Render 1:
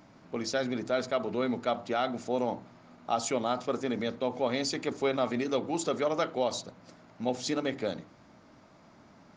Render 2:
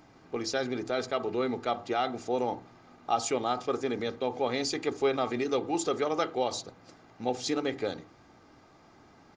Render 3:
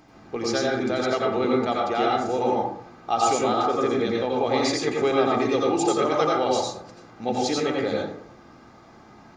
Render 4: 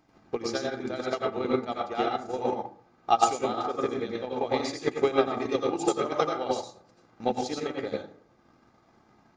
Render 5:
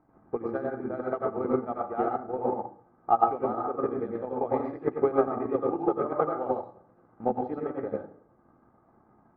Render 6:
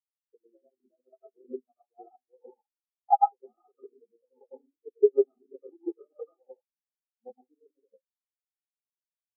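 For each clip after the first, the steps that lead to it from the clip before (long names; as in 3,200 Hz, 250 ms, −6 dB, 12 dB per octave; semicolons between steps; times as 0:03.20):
comb filter 2.5 ms, depth 46%
dense smooth reverb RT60 0.6 s, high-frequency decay 0.45×, pre-delay 75 ms, DRR −2.5 dB; level +3 dB
transient designer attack +9 dB, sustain −4 dB; expander for the loud parts 1.5 to 1, over −30 dBFS; level −4 dB
low-pass filter 1,400 Hz 24 dB per octave
every bin expanded away from the loudest bin 4 to 1; level −2 dB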